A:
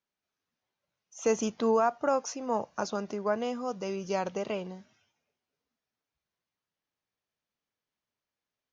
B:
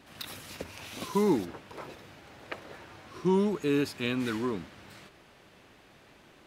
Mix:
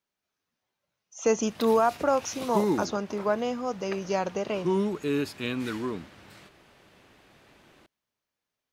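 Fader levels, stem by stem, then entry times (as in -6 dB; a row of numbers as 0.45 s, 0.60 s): +3.0 dB, -0.5 dB; 0.00 s, 1.40 s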